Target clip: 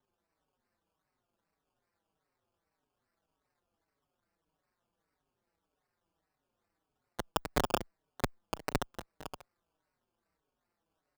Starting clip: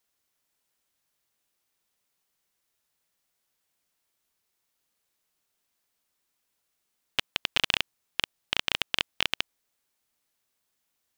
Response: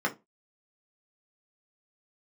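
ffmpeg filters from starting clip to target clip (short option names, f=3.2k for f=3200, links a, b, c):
-filter_complex "[0:a]acrusher=samples=18:mix=1:aa=0.000001:lfo=1:lforange=10.8:lforate=2.5,aeval=exprs='val(0)*sin(2*PI*53*n/s)':c=same,asplit=2[a][b];[b]adelay=5.1,afreqshift=-1.7[c];[a][c]amix=inputs=2:normalize=1"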